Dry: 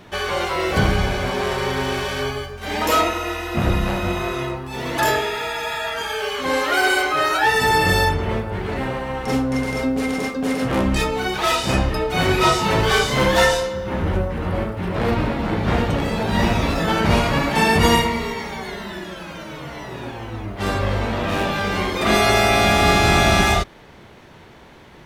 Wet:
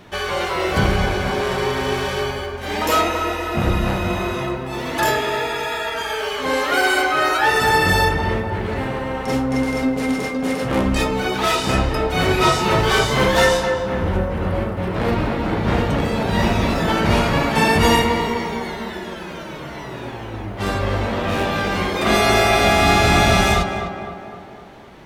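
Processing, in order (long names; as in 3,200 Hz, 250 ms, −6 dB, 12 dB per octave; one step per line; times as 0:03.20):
tape delay 254 ms, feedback 63%, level −5.5 dB, low-pass 1,700 Hz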